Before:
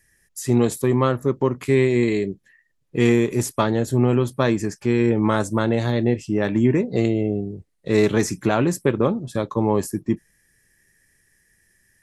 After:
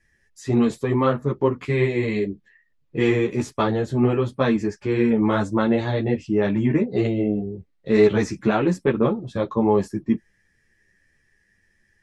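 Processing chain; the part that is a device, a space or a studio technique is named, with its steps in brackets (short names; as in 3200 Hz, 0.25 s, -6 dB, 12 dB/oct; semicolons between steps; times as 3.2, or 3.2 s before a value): string-machine ensemble chorus (ensemble effect; LPF 4200 Hz 12 dB/oct); gain +2.5 dB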